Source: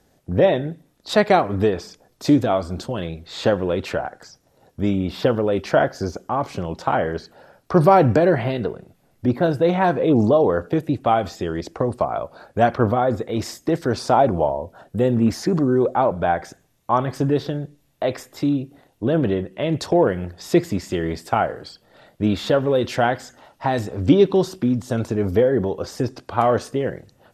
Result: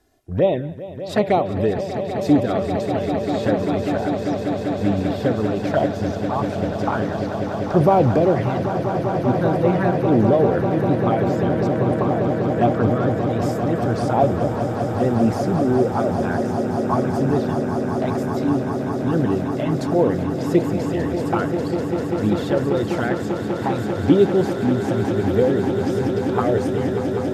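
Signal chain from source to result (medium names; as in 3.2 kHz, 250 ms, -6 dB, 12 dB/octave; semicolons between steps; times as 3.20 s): dynamic bell 4.5 kHz, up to -6 dB, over -42 dBFS, Q 0.87; touch-sensitive flanger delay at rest 2.9 ms, full sweep at -11.5 dBFS; echo with a slow build-up 197 ms, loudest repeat 8, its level -11 dB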